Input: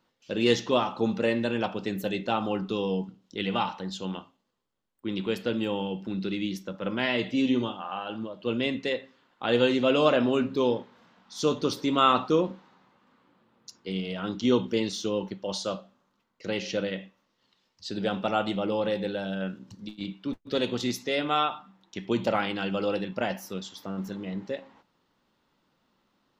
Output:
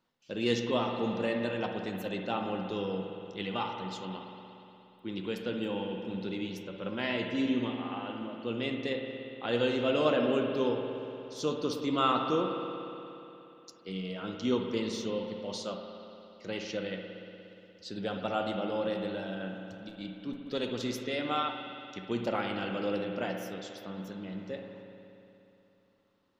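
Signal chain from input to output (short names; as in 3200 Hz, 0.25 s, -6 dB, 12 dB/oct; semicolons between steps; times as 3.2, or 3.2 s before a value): spring tank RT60 3 s, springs 59 ms, chirp 55 ms, DRR 3.5 dB; gain -6.5 dB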